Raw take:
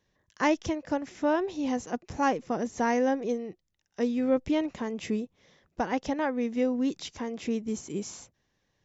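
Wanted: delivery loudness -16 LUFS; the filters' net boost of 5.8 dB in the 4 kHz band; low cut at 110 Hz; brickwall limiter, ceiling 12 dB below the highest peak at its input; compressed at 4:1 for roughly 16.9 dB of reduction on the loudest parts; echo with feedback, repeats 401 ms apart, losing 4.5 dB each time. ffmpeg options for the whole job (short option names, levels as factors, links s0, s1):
-af "highpass=110,equalizer=f=4000:t=o:g=8,acompressor=threshold=0.00891:ratio=4,alimiter=level_in=3.98:limit=0.0631:level=0:latency=1,volume=0.251,aecho=1:1:401|802|1203|1604|2005|2406|2807|3208|3609:0.596|0.357|0.214|0.129|0.0772|0.0463|0.0278|0.0167|0.01,volume=25.1"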